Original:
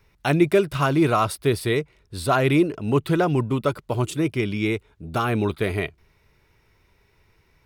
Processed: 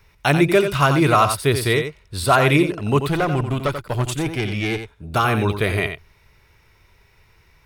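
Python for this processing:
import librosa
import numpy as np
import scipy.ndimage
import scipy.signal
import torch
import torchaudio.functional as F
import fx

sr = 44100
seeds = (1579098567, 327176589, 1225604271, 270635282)

y = fx.tube_stage(x, sr, drive_db=17.0, bias=0.4, at=(2.99, 5.14))
y = fx.peak_eq(y, sr, hz=280.0, db=-6.5, octaves=1.9)
y = y + 10.0 ** (-8.5 / 20.0) * np.pad(y, (int(88 * sr / 1000.0), 0))[:len(y)]
y = y * 10.0 ** (6.5 / 20.0)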